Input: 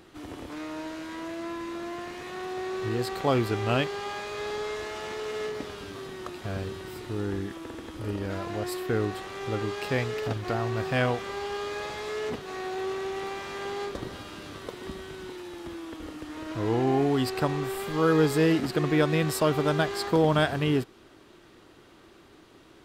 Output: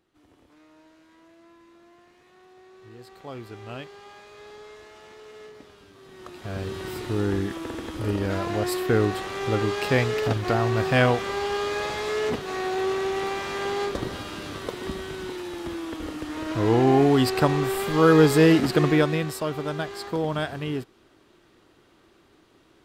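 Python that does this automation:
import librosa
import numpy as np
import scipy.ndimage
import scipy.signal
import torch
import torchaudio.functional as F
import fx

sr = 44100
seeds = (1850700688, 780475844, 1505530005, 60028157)

y = fx.gain(x, sr, db=fx.line((2.74, -18.5), (3.63, -12.0), (5.97, -12.0), (6.2, -5.5), (6.85, 6.0), (18.84, 6.0), (19.37, -4.5)))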